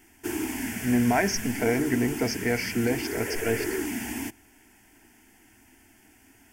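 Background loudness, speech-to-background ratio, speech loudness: -32.5 LUFS, 5.5 dB, -27.0 LUFS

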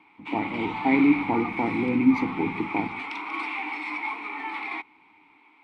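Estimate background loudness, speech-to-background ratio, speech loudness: -32.0 LUFS, 7.0 dB, -25.0 LUFS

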